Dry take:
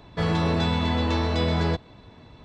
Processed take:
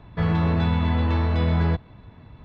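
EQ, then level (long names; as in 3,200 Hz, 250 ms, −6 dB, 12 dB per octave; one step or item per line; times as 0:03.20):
bass and treble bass +14 dB, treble −13 dB
tilt shelving filter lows −6.5 dB, about 670 Hz
high-shelf EQ 3,300 Hz −11 dB
−2.5 dB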